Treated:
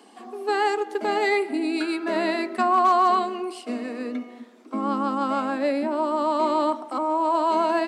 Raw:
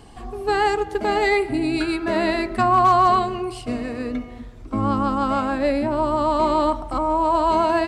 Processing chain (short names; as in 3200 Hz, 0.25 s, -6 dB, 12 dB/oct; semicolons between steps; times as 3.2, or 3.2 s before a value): steep high-pass 210 Hz 72 dB/oct; gain -3 dB